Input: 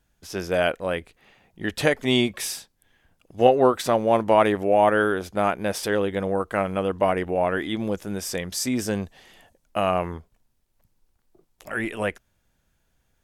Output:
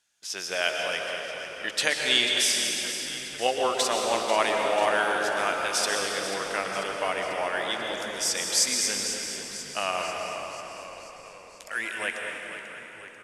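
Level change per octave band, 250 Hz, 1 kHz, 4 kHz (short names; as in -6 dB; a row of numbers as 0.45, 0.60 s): -13.0, -3.5, +7.0 dB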